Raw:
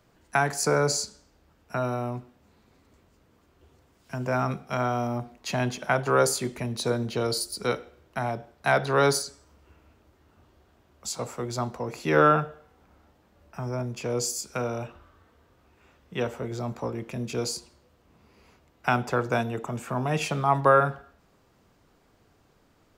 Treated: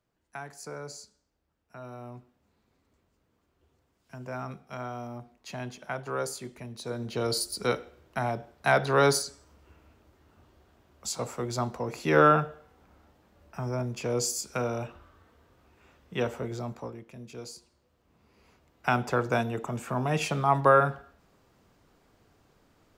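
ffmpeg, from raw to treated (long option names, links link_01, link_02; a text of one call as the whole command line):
ffmpeg -i in.wav -af "volume=11dB,afade=type=in:start_time=1.75:duration=0.44:silence=0.473151,afade=type=in:start_time=6.86:duration=0.51:silence=0.316228,afade=type=out:start_time=16.37:duration=0.67:silence=0.251189,afade=type=in:start_time=17.56:duration=1.53:silence=0.266073" out.wav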